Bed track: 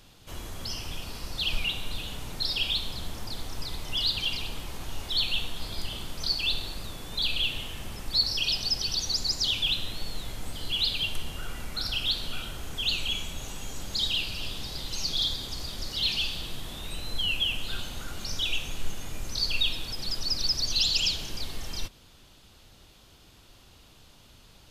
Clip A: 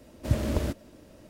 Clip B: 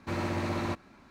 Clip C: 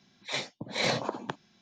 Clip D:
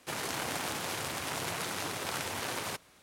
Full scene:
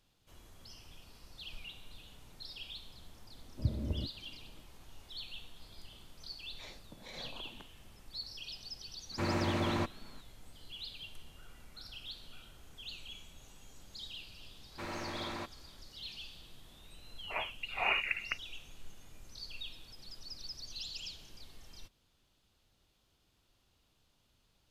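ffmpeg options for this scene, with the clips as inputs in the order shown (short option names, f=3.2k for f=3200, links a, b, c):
-filter_complex "[3:a]asplit=2[a][b];[2:a]asplit=2[c][d];[0:a]volume=-18.5dB[e];[1:a]bandpass=f=100:t=q:w=0.54:csg=0[f];[a]alimiter=level_in=1.5dB:limit=-24dB:level=0:latency=1:release=84,volume=-1.5dB[g];[d]lowshelf=f=330:g=-10.5[h];[b]lowpass=f=2.6k:t=q:w=0.5098,lowpass=f=2.6k:t=q:w=0.6013,lowpass=f=2.6k:t=q:w=0.9,lowpass=f=2.6k:t=q:w=2.563,afreqshift=-3000[i];[f]atrim=end=1.29,asetpts=PTS-STARTPTS,volume=-6.5dB,afade=t=in:d=0.004:c=hsin,afade=t=out:st=1.286:d=0.004:c=hsin,adelay=3340[j];[g]atrim=end=1.61,asetpts=PTS-STARTPTS,volume=-14dB,afade=t=in:d=0.004:c=hsin,afade=t=out:st=1.606:d=0.004:c=hsin,adelay=6310[k];[c]atrim=end=1.1,asetpts=PTS-STARTPTS,volume=-1dB,afade=t=in:d=0.004:c=hsin,afade=t=out:st=1.096:d=0.004:c=hsin,adelay=9110[l];[h]atrim=end=1.1,asetpts=PTS-STARTPTS,volume=-5.5dB,afade=t=in:d=0.004:c=hsin,afade=t=out:st=1.096:d=0.004:c=hsin,adelay=14710[m];[i]atrim=end=1.61,asetpts=PTS-STARTPTS,volume=-2dB,afade=t=in:d=0.004:c=hsin,afade=t=out:st=1.606:d=0.004:c=hsin,adelay=17020[n];[e][j][k][l][m][n]amix=inputs=6:normalize=0"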